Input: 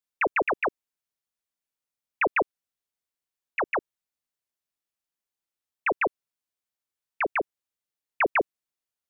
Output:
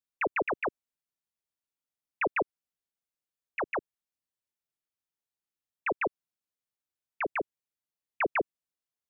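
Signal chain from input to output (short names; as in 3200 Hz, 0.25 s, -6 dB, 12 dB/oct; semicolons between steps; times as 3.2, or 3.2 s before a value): bell 140 Hz +4.5 dB 3 oct; gain -6 dB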